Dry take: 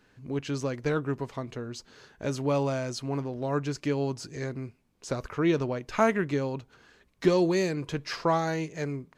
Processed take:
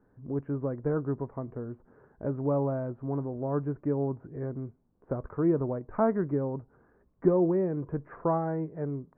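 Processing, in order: Bessel low-pass 840 Hz, order 8

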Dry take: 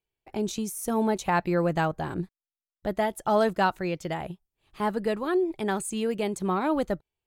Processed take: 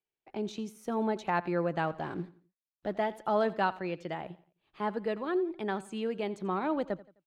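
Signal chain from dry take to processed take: 1.87–3.19 G.711 law mismatch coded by mu; three-band isolator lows -13 dB, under 150 Hz, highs -19 dB, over 4700 Hz; feedback echo 86 ms, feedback 37%, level -19 dB; gain -5 dB

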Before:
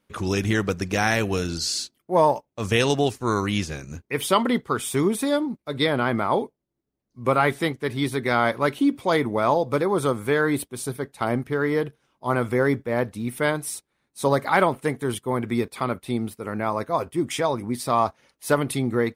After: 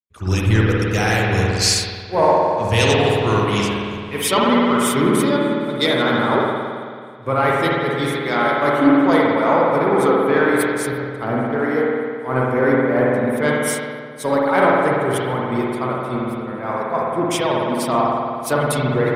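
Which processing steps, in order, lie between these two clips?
reverb removal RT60 1.5 s; in parallel at +2 dB: limiter -13 dBFS, peak gain reduction 7 dB; on the sum: spring tank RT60 3.7 s, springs 54 ms, chirp 40 ms, DRR -4.5 dB; soft clip -1.5 dBFS, distortion -24 dB; on a send: swung echo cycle 0.809 s, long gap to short 3:1, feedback 61%, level -23.5 dB; on the sum: three-band expander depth 100%; gain -4 dB

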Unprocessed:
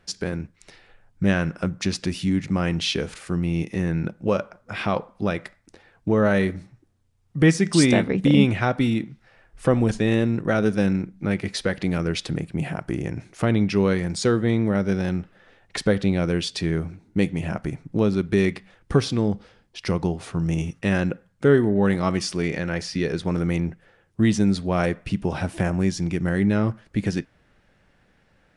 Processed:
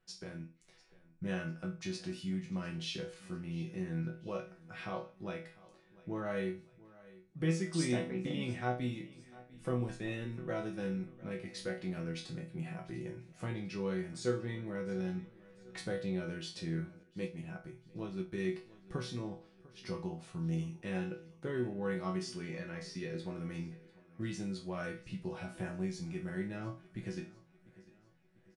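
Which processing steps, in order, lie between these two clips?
resonator bank B2 sus4, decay 0.34 s; feedback echo 0.698 s, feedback 49%, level -20.5 dB; 17.03–18.46 upward expander 1.5:1, over -44 dBFS; gain -1.5 dB

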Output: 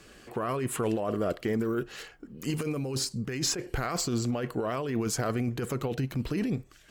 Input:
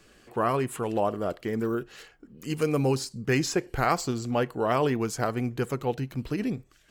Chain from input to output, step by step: dynamic EQ 850 Hz, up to -7 dB, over -45 dBFS, Q 4.1; negative-ratio compressor -30 dBFS, ratio -1; added harmonics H 5 -30 dB, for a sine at -16 dBFS

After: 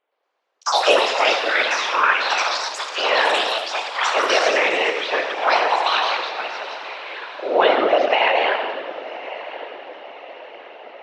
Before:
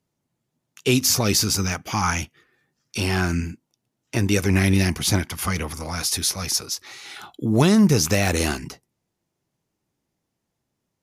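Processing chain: mistuned SSB +190 Hz 320–3100 Hz; diffused feedback echo 1.111 s, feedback 50%, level -15 dB; on a send at -4.5 dB: reverb RT60 1.3 s, pre-delay 30 ms; on the sum: whisperiser; echoes that change speed 0.116 s, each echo +6 st, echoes 2; gain +6 dB

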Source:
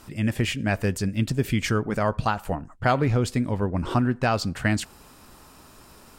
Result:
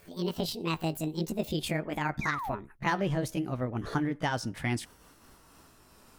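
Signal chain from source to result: gliding pitch shift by +9.5 st ending unshifted; painted sound fall, 2.21–2.55, 570–2500 Hz -29 dBFS; gain -6.5 dB

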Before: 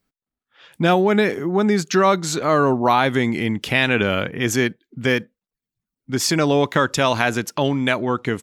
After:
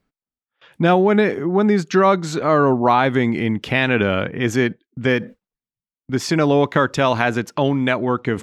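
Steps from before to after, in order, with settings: gate with hold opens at -36 dBFS; reverse; upward compressor, threshold -27 dBFS; reverse; LPF 2200 Hz 6 dB/oct; gain +2 dB

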